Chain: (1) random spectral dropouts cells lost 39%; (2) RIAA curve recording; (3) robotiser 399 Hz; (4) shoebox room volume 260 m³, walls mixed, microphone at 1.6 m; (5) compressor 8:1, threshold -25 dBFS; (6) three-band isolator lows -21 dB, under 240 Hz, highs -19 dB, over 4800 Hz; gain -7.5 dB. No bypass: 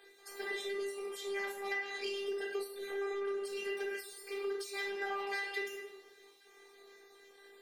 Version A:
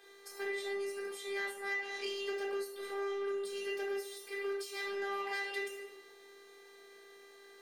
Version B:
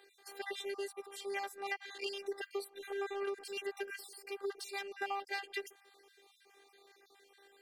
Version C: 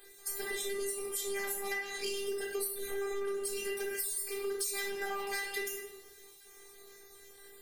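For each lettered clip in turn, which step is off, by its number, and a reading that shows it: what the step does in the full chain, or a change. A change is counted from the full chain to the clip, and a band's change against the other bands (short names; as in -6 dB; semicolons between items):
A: 1, crest factor change -1.5 dB; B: 4, momentary loudness spread change -15 LU; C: 6, 8 kHz band +13.5 dB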